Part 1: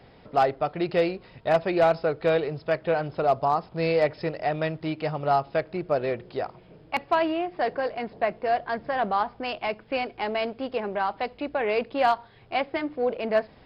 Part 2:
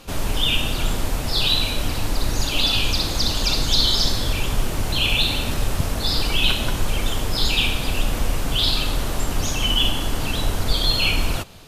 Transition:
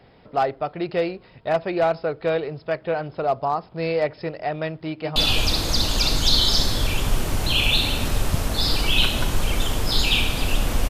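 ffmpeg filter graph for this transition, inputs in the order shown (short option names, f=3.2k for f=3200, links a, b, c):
-filter_complex "[0:a]apad=whole_dur=10.89,atrim=end=10.89,atrim=end=5.162[a];[1:a]atrim=start=2.618:end=8.35[b];[a][b]acrossfade=d=0.004:c1=hsin:c2=hsin,asplit=2[c][d];[d]afade=t=in:st=4.88:d=0.01,afade=t=out:st=5.16:d=0.01,aecho=0:1:160|320|480|640|800|960|1120|1280|1440|1600|1760|1920:0.562341|0.393639|0.275547|0.192883|0.135018|0.0945127|0.0661589|0.0463112|0.0324179|0.0226925|0.0158848|0.0111193[e];[c][e]amix=inputs=2:normalize=0"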